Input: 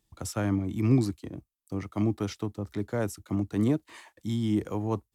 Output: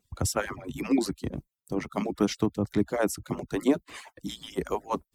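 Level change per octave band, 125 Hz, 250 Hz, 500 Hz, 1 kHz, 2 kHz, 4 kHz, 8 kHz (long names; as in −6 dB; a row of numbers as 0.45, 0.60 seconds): −6.5, −0.5, +4.0, +5.5, +5.5, +6.0, +7.0 decibels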